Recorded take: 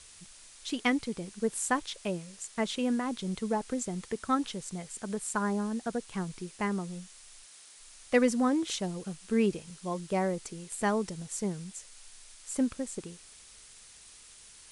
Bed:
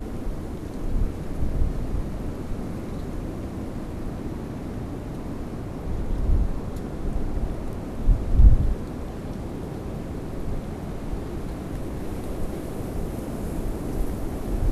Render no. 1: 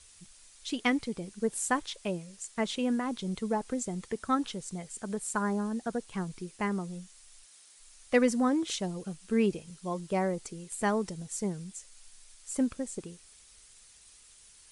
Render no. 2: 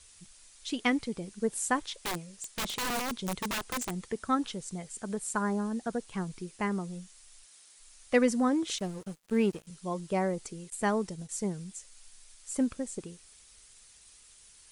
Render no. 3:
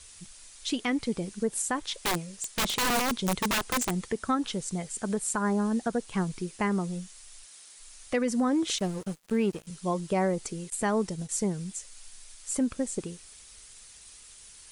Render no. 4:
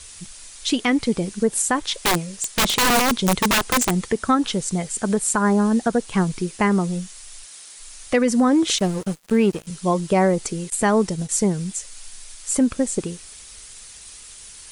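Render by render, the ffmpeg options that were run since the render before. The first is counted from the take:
-af "afftdn=nr=6:nf=-54"
-filter_complex "[0:a]asettb=1/sr,asplit=3[a][b][c];[a]atrim=end=2.044[d];[b]atrim=start=2.04:end=3.94,asetpts=PTS-STARTPTS,afade=t=in:d=0.004:c=qsin,afade=t=out:st=1.896:d=0.004:c=qsin,aeval=exprs='(mod(23.7*val(0)+1,2)-1)/23.7':c=same[e];[c]atrim=start=3.936[f];[d][e]acrossfade=d=0.004:c1=hsin:c2=qsin[g];[g][f]acrossfade=d=0.004:c1=qsin:c2=hsin,asettb=1/sr,asplit=3[h][i][j];[h]atrim=end=8.784[k];[i]atrim=start=8.78:end=9.67,asetpts=PTS-STARTPTS,afade=t=in:d=0.004:c=qsin,afade=t=out:st=0.886:d=0.004:c=qsin,aeval=exprs='sgn(val(0))*max(abs(val(0))-0.00398,0)':c=same[l];[j]atrim=start=9.666[m];[k][l]acrossfade=d=0.004:c1=hsin:c2=qsin[n];[n][m]acrossfade=d=0.004:c1=qsin:c2=hsin,asettb=1/sr,asplit=3[o][p][q];[o]atrim=end=10.704[r];[p]atrim=start=10.7:end=11.29,asetpts=PTS-STARTPTS,afade=t=in:d=0.004:c=qsin,afade=t=out:st=0.586:d=0.004:c=qsin,agate=range=-33dB:threshold=-40dB:ratio=3:release=100:detection=peak[s];[q]atrim=start=11.286[t];[r][s]acrossfade=d=0.004:c1=hsin:c2=qsin[u];[u][t]acrossfade=d=0.004:c1=qsin:c2=hsin"
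-af "acontrast=53,alimiter=limit=-18.5dB:level=0:latency=1:release=206"
-af "volume=9dB"

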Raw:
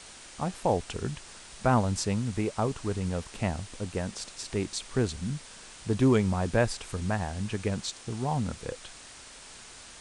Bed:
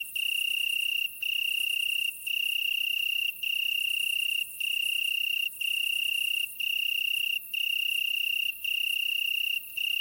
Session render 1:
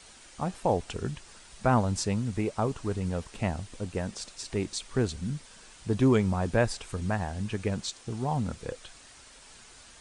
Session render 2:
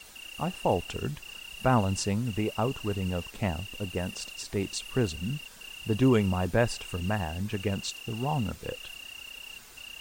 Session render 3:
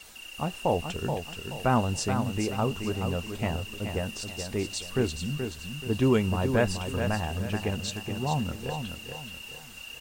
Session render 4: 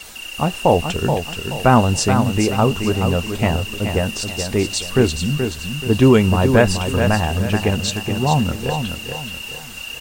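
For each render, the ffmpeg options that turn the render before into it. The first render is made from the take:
-af "afftdn=nr=6:nf=-48"
-filter_complex "[1:a]volume=-15.5dB[a];[0:a][a]amix=inputs=2:normalize=0"
-filter_complex "[0:a]asplit=2[a][b];[b]adelay=13,volume=-12dB[c];[a][c]amix=inputs=2:normalize=0,asplit=2[d][e];[e]aecho=0:1:428|856|1284|1712:0.447|0.156|0.0547|0.0192[f];[d][f]amix=inputs=2:normalize=0"
-af "volume=11.5dB,alimiter=limit=-1dB:level=0:latency=1"

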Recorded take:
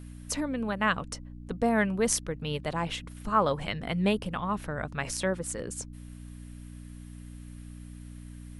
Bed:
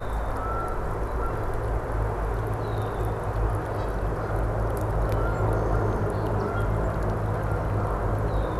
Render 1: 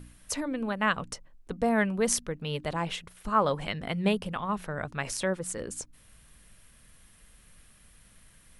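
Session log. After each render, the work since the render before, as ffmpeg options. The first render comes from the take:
-af "bandreject=f=60:t=h:w=4,bandreject=f=120:t=h:w=4,bandreject=f=180:t=h:w=4,bandreject=f=240:t=h:w=4,bandreject=f=300:t=h:w=4"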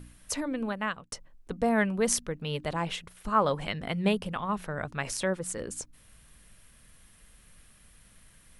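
-filter_complex "[0:a]asplit=2[a][b];[a]atrim=end=1.12,asetpts=PTS-STARTPTS,afade=t=out:st=0.64:d=0.48[c];[b]atrim=start=1.12,asetpts=PTS-STARTPTS,afade=t=in:d=0.004:c=hsin[d];[c][d]concat=n=2:v=0:a=1"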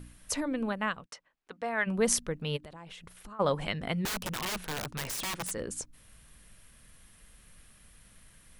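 -filter_complex "[0:a]asplit=3[a][b][c];[a]afade=t=out:st=1.05:d=0.02[d];[b]bandpass=f=1.9k:t=q:w=0.7,afade=t=in:st=1.05:d=0.02,afade=t=out:st=1.86:d=0.02[e];[c]afade=t=in:st=1.86:d=0.02[f];[d][e][f]amix=inputs=3:normalize=0,asplit=3[g][h][i];[g]afade=t=out:st=2.56:d=0.02[j];[h]acompressor=threshold=-43dB:ratio=10:attack=3.2:release=140:knee=1:detection=peak,afade=t=in:st=2.56:d=0.02,afade=t=out:st=3.39:d=0.02[k];[i]afade=t=in:st=3.39:d=0.02[l];[j][k][l]amix=inputs=3:normalize=0,asettb=1/sr,asplit=3[m][n][o];[m]atrim=end=4.054[p];[n]atrim=start=4.05:end=5.51,asetpts=PTS-STARTPTS,afade=t=in:d=0.004:c=qsin,afade=t=out:st=1.456:d=0.004:c=qsin,aeval=exprs='(mod(26.6*val(0)+1,2)-1)/26.6':c=same[q];[o]atrim=start=5.506[r];[p][q]acrossfade=d=0.004:c1=hsin:c2=qsin[s];[s][r]acrossfade=d=0.004:c1=qsin:c2=hsin"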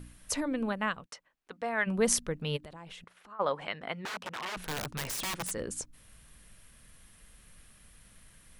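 -filter_complex "[0:a]asettb=1/sr,asplit=3[a][b][c];[a]atrim=end=3.044[d];[b]atrim=start=3.04:end=4.57,asetpts=PTS-STARTPTS,afade=t=in:d=0.004:c=qsin,afade=t=out:st=1.526:d=0.004:c=qsin,bandpass=f=1.2k:t=q:w=0.56[e];[c]atrim=start=4.566[f];[d][e]acrossfade=d=0.004:c1=hsin:c2=qsin[g];[g][f]acrossfade=d=0.004:c1=qsin:c2=hsin"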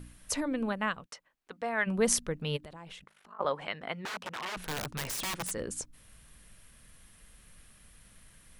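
-filter_complex "[0:a]asettb=1/sr,asplit=3[a][b][c];[a]atrim=end=2.984[d];[b]atrim=start=2.98:end=3.45,asetpts=PTS-STARTPTS,afade=t=in:d=0.004:c=qsin,afade=t=out:st=0.466:d=0.004:c=qsin,aeval=exprs='val(0)*sin(2*PI*25*n/s)':c=same[e];[c]atrim=start=3.446[f];[d][e]acrossfade=d=0.004:c1=hsin:c2=qsin[g];[g][f]acrossfade=d=0.004:c1=qsin:c2=hsin"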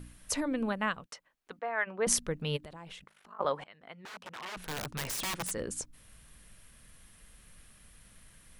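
-filter_complex "[0:a]asettb=1/sr,asplit=3[a][b][c];[a]atrim=end=1.594[d];[b]atrim=start=1.59:end=2.07,asetpts=PTS-STARTPTS,afade=t=in:d=0.004:c=qsin,afade=t=out:st=0.476:d=0.004:c=qsin,highpass=470,lowpass=2.2k[e];[c]atrim=start=2.066[f];[d][e]acrossfade=d=0.004:c1=hsin:c2=qsin[g];[g][f]acrossfade=d=0.004:c1=qsin:c2=hsin,asplit=2[h][i];[h]atrim=end=3.64,asetpts=PTS-STARTPTS,afade=t=out:st=3.636:d=0.004:c=hsin:silence=0.0794328[j];[i]atrim=start=3.64,asetpts=PTS-STARTPTS,afade=t=in:d=1.42:silence=0.0794328[k];[j][k]concat=n=2:v=0:a=1"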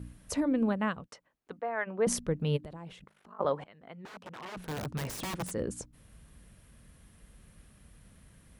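-af "highpass=43,tiltshelf=f=840:g=6"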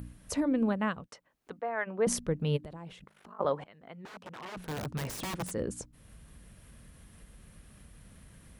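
-af "acompressor=mode=upward:threshold=-47dB:ratio=2.5"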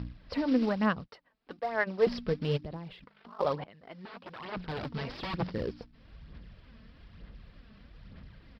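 -af "aresample=11025,acrusher=bits=5:mode=log:mix=0:aa=0.000001,aresample=44100,aphaser=in_gain=1:out_gain=1:delay=4.6:decay=0.46:speed=1.1:type=sinusoidal"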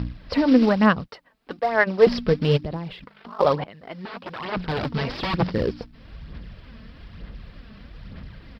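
-af "volume=10.5dB"

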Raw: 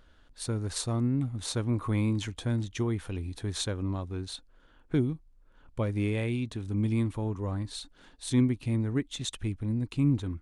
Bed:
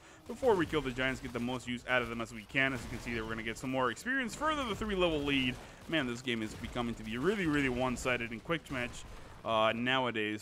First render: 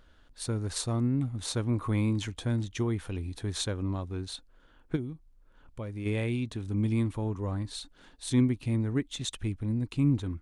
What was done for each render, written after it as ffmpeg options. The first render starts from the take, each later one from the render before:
-filter_complex "[0:a]asplit=3[a][b][c];[a]afade=t=out:st=4.95:d=0.02[d];[b]acompressor=threshold=-48dB:ratio=1.5:attack=3.2:release=140:knee=1:detection=peak,afade=t=in:st=4.95:d=0.02,afade=t=out:st=6.05:d=0.02[e];[c]afade=t=in:st=6.05:d=0.02[f];[d][e][f]amix=inputs=3:normalize=0"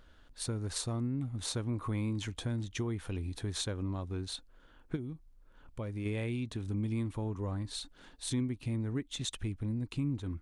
-af "acompressor=threshold=-34dB:ratio=2.5"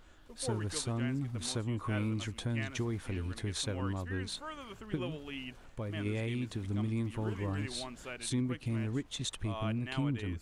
-filter_complex "[1:a]volume=-11.5dB[a];[0:a][a]amix=inputs=2:normalize=0"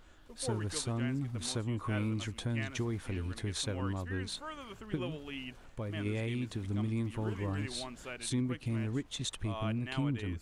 -af anull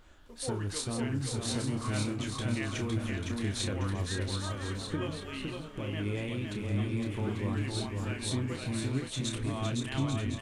-filter_complex "[0:a]asplit=2[a][b];[b]adelay=30,volume=-7dB[c];[a][c]amix=inputs=2:normalize=0,asplit=2[d][e];[e]aecho=0:1:510|841.5|1057|1197|1288:0.631|0.398|0.251|0.158|0.1[f];[d][f]amix=inputs=2:normalize=0"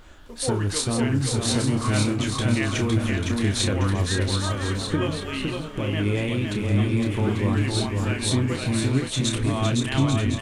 -af "volume=10dB"

